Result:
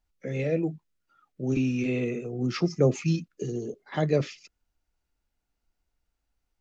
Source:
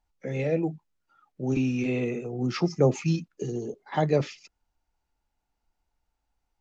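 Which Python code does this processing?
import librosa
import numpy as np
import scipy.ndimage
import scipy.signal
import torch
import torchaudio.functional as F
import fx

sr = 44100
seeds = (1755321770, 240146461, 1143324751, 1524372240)

y = fx.peak_eq(x, sr, hz=860.0, db=-9.5, octaves=0.47)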